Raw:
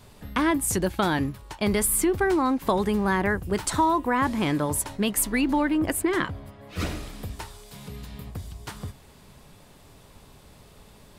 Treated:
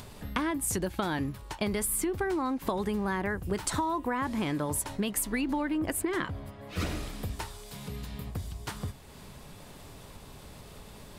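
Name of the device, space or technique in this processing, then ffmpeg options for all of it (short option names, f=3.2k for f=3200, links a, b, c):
upward and downward compression: -af "acompressor=mode=upward:threshold=-41dB:ratio=2.5,acompressor=threshold=-27dB:ratio=6"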